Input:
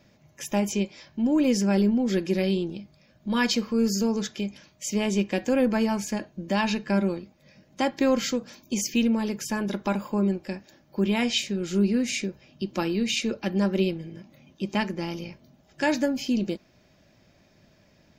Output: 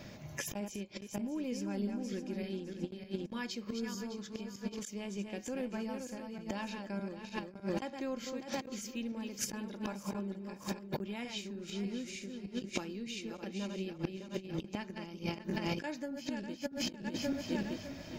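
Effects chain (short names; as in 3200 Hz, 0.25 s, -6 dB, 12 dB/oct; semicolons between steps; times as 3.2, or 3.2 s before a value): regenerating reverse delay 0.304 s, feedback 51%, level -5.5 dB; flipped gate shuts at -21 dBFS, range -26 dB; negative-ratio compressor -41 dBFS, ratio -0.5; gain +6 dB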